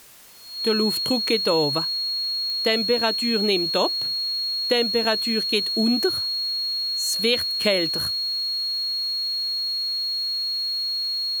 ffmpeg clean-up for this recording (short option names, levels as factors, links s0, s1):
-af "adeclick=t=4,bandreject=f=4300:w=30,afwtdn=0.004"